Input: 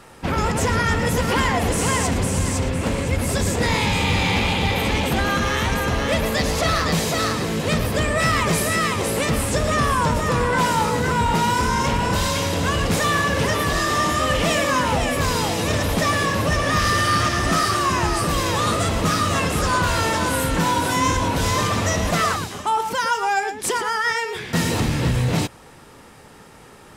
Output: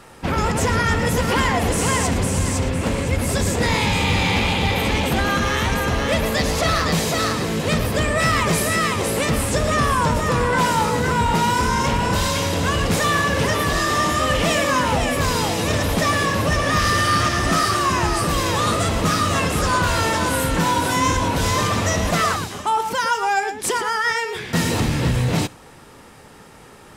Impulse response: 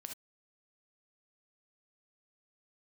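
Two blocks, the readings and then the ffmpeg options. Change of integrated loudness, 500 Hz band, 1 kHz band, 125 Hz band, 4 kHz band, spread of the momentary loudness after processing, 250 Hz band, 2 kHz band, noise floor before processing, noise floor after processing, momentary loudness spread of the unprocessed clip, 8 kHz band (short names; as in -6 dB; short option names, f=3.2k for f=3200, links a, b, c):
+1.0 dB, +1.0 dB, +1.0 dB, +1.0 dB, +1.0 dB, 3 LU, +1.0 dB, +1.0 dB, -45 dBFS, -44 dBFS, 3 LU, +1.0 dB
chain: -filter_complex "[0:a]asplit=2[a][b];[1:a]atrim=start_sample=2205[c];[b][c]afir=irnorm=-1:irlink=0,volume=-14dB[d];[a][d]amix=inputs=2:normalize=0"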